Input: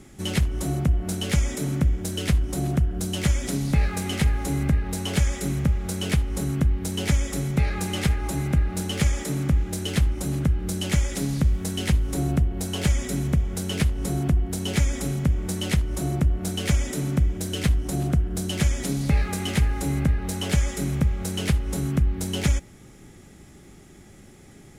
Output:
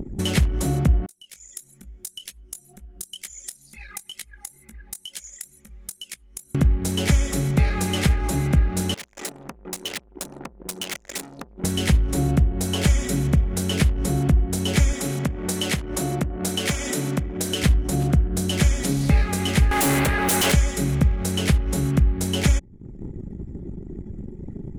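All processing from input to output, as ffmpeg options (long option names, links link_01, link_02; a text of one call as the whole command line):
ffmpeg -i in.wav -filter_complex "[0:a]asettb=1/sr,asplit=3[link_01][link_02][link_03];[link_01]atrim=end=1.064[link_04];[link_02]atrim=start=1.06:end=6.55,asetpts=PTS-STARTPTS,afade=type=in:duration=0.004:curve=qsin,afade=type=out:start_time=5.486:duration=0.004:curve=qsin,aderivative,acompressor=threshold=-43dB:ratio=2.5:attack=3.2:release=140:knee=1:detection=peak,flanger=delay=18:depth=5.4:speed=2.2[link_05];[link_03]atrim=start=6.546[link_06];[link_04][link_05]acrossfade=duration=0.004:curve1=hsin:curve2=qsin[link_07];[link_07][link_06]acrossfade=duration=0.004:curve1=qsin:curve2=hsin,asettb=1/sr,asplit=3[link_08][link_09][link_10];[link_08]atrim=end=8.944[link_11];[link_09]atrim=start=8.94:end=11.64,asetpts=PTS-STARTPTS,afade=type=in:duration=0.004:curve=qsin,afade=type=out:start_time=2.696:duration=0.004:curve=qsin,highshelf=frequency=11000:gain=-3,aeval=exprs='(tanh(70.8*val(0)+0.7)-tanh(0.7))/70.8':channel_layout=same,highpass=frequency=740:poles=1[link_12];[link_10]atrim=start=11.636[link_13];[link_11][link_12]acrossfade=duration=0.004:curve1=hsin:curve2=qsin[link_14];[link_14][link_13]acrossfade=duration=0.004:curve1=qsin:curve2=hsin,asettb=1/sr,asplit=3[link_15][link_16][link_17];[link_15]atrim=end=14.934[link_18];[link_16]atrim=start=14.93:end=17.63,asetpts=PTS-STARTPTS,afade=type=in:duration=0.004:curve=qsin,afade=type=out:start_time=2.696:duration=0.004:curve=qsin,highpass=frequency=270:poles=1,asoftclip=type=hard:threshold=-18.5dB[link_19];[link_17]atrim=start=17.626[link_20];[link_18][link_19]acrossfade=duration=0.004:curve1=hsin:curve2=qsin[link_21];[link_21][link_20]acrossfade=duration=0.004:curve1=qsin:curve2=hsin,asettb=1/sr,asplit=3[link_22][link_23][link_24];[link_22]atrim=end=19.714[link_25];[link_23]atrim=start=19.71:end=20.52,asetpts=PTS-STARTPTS,afade=type=in:duration=0.004:curve=qsin,afade=type=out:start_time=0.806:duration=0.004:curve=qsin,highpass=frequency=840:poles=1,equalizer=frequency=4800:width_type=o:width=1.3:gain=-7,aeval=exprs='0.106*sin(PI/2*5.01*val(0)/0.106)':channel_layout=same[link_26];[link_24]atrim=start=20.516[link_27];[link_25][link_26]acrossfade=duration=0.004:curve1=hsin:curve2=qsin[link_28];[link_28][link_27]acrossfade=duration=0.004:curve1=qsin:curve2=hsin,anlmdn=0.158,acompressor=mode=upward:threshold=-22dB:ratio=2.5,volume=3dB" out.wav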